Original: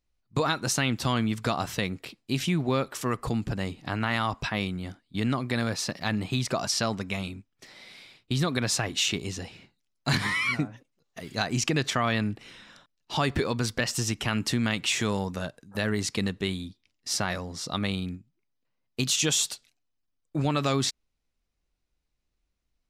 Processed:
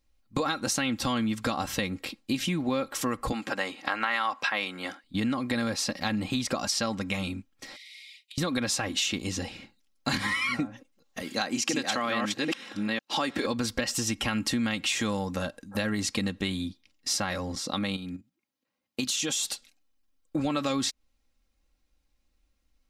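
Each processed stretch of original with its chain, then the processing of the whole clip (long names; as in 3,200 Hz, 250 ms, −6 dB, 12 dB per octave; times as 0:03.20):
0:03.32–0:05.04: high-pass filter 380 Hz + parametric band 1,600 Hz +7.5 dB 2.4 octaves
0:07.76–0:08.38: Chebyshev high-pass filter 1,900 Hz, order 8 + downward compressor 16 to 1, threshold −49 dBFS
0:11.22–0:13.46: delay that plays each chunk backwards 442 ms, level −1.5 dB + high-pass filter 220 Hz
0:17.55–0:19.45: output level in coarse steps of 10 dB + high-pass filter 110 Hz
whole clip: comb filter 3.7 ms, depth 60%; downward compressor 3 to 1, threshold −32 dBFS; level +4.5 dB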